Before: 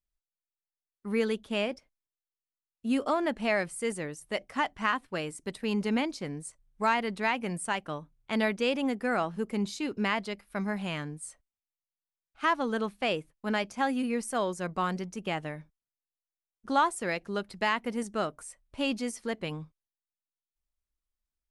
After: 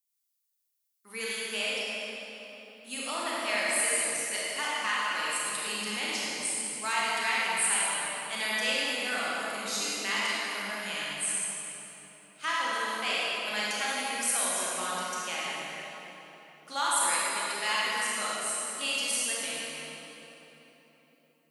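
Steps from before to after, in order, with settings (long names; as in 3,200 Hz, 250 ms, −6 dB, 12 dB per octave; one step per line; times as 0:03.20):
high-pass filter 51 Hz
first difference
convolution reverb RT60 3.9 s, pre-delay 26 ms, DRR −7.5 dB
level +7.5 dB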